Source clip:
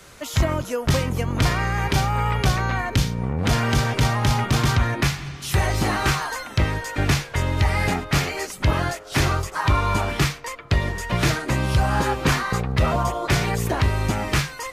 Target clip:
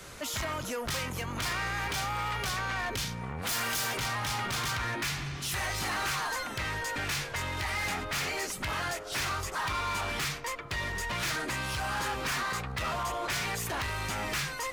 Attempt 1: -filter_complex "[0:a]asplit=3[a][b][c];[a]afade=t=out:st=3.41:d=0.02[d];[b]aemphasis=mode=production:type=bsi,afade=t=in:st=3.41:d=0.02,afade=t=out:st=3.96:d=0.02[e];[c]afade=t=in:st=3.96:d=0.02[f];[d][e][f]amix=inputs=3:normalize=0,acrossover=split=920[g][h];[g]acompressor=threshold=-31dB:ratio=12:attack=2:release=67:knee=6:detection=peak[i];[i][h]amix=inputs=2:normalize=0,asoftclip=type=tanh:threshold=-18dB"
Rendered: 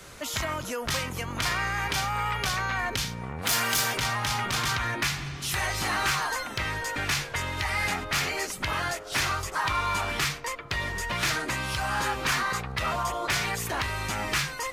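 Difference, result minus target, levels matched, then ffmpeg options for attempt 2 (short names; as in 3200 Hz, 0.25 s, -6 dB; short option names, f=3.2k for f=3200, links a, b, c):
soft clip: distortion -10 dB
-filter_complex "[0:a]asplit=3[a][b][c];[a]afade=t=out:st=3.41:d=0.02[d];[b]aemphasis=mode=production:type=bsi,afade=t=in:st=3.41:d=0.02,afade=t=out:st=3.96:d=0.02[e];[c]afade=t=in:st=3.96:d=0.02[f];[d][e][f]amix=inputs=3:normalize=0,acrossover=split=920[g][h];[g]acompressor=threshold=-31dB:ratio=12:attack=2:release=67:knee=6:detection=peak[i];[i][h]amix=inputs=2:normalize=0,asoftclip=type=tanh:threshold=-29dB"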